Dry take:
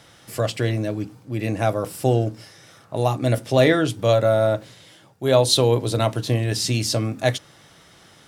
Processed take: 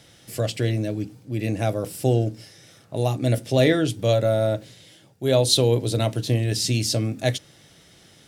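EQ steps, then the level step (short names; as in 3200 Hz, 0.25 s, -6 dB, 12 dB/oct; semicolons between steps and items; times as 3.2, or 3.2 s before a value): bell 1100 Hz -10 dB 1.2 oct; 0.0 dB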